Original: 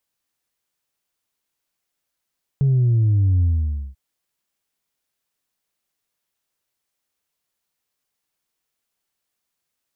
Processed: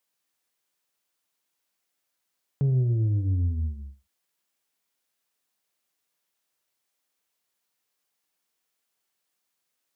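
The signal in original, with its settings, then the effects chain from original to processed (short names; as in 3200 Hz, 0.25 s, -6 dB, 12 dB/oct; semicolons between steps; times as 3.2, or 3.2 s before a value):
sub drop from 140 Hz, over 1.34 s, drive 1 dB, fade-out 0.53 s, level -14 dB
HPF 210 Hz 6 dB/oct; non-linear reverb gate 0.14 s flat, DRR 11.5 dB; Doppler distortion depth 0.12 ms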